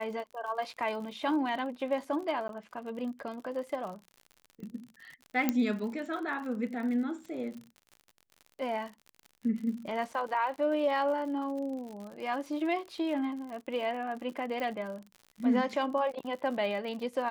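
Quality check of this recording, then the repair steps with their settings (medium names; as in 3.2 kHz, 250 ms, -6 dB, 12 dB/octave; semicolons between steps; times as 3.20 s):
crackle 60 per s -40 dBFS
2.48–2.49 s: dropout 12 ms
5.49 s: pop -13 dBFS
14.60 s: pop -25 dBFS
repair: de-click; interpolate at 2.48 s, 12 ms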